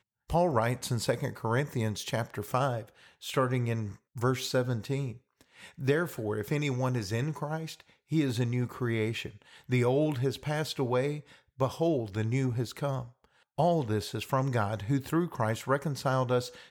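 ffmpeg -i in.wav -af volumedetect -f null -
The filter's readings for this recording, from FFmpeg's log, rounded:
mean_volume: -30.7 dB
max_volume: -13.3 dB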